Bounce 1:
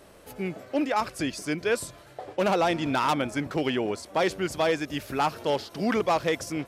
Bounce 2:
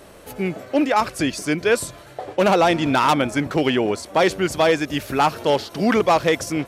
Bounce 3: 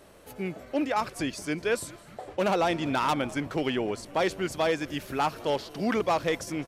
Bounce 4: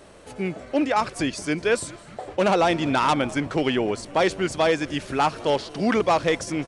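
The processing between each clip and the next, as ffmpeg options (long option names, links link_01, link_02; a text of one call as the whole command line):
ffmpeg -i in.wav -af "bandreject=frequency=5000:width=26,volume=7.5dB" out.wav
ffmpeg -i in.wav -filter_complex "[0:a]asplit=6[link_01][link_02][link_03][link_04][link_05][link_06];[link_02]adelay=207,afreqshift=-130,volume=-23dB[link_07];[link_03]adelay=414,afreqshift=-260,volume=-27.2dB[link_08];[link_04]adelay=621,afreqshift=-390,volume=-31.3dB[link_09];[link_05]adelay=828,afreqshift=-520,volume=-35.5dB[link_10];[link_06]adelay=1035,afreqshift=-650,volume=-39.6dB[link_11];[link_01][link_07][link_08][link_09][link_10][link_11]amix=inputs=6:normalize=0,volume=-9dB" out.wav
ffmpeg -i in.wav -af "aresample=22050,aresample=44100,volume=5.5dB" out.wav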